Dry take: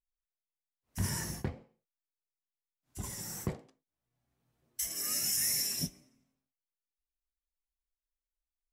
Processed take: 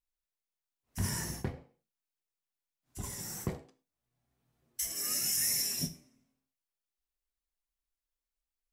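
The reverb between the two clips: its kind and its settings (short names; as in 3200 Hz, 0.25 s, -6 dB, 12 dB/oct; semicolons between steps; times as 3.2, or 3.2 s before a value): non-linear reverb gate 0.14 s falling, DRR 10.5 dB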